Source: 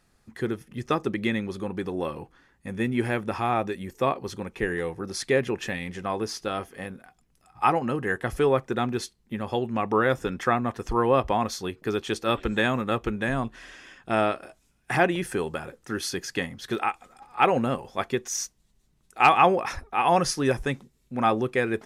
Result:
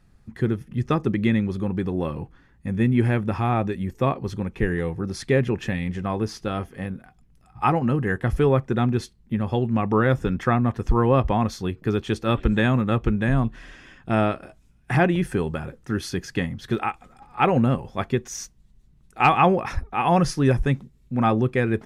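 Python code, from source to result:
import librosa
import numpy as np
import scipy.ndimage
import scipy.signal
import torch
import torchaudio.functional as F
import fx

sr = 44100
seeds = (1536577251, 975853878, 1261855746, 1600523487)

y = fx.bass_treble(x, sr, bass_db=12, treble_db=-5)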